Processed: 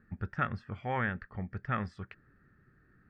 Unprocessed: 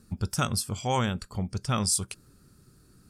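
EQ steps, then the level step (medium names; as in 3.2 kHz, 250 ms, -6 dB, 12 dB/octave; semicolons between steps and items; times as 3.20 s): four-pole ladder low-pass 1.9 kHz, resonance 80%; band-stop 1 kHz, Q 11; +5.0 dB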